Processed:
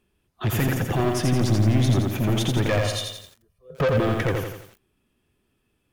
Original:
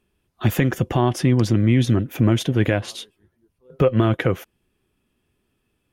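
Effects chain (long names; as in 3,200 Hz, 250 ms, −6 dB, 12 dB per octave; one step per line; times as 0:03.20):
0:02.68–0:03.98: comb filter 1.7 ms, depth 96%
soft clipping −18 dBFS, distortion −8 dB
feedback echo at a low word length 85 ms, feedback 55%, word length 8 bits, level −3 dB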